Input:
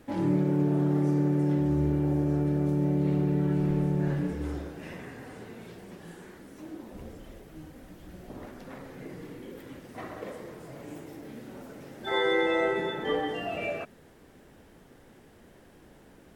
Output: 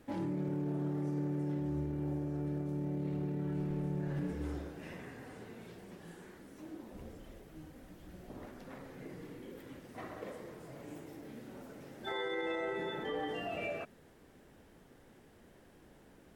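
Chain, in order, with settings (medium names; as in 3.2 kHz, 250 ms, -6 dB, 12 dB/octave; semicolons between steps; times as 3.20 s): peak limiter -23.5 dBFS, peak gain reduction 9.5 dB; trim -5.5 dB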